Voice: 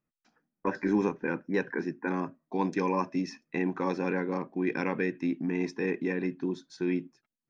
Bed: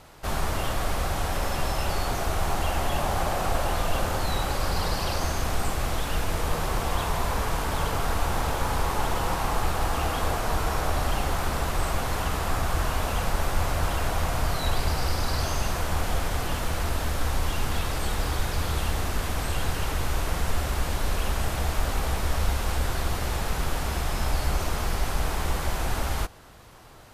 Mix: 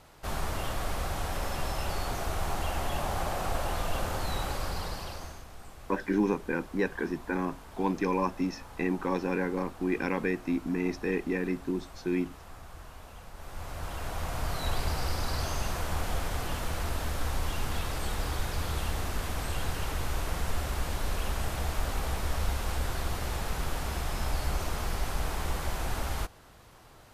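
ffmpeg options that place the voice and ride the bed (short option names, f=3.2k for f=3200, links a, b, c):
-filter_complex "[0:a]adelay=5250,volume=0dB[a];[1:a]volume=10.5dB,afade=t=out:st=4.47:d=0.99:silence=0.16788,afade=t=in:st=13.34:d=1.38:silence=0.158489[b];[a][b]amix=inputs=2:normalize=0"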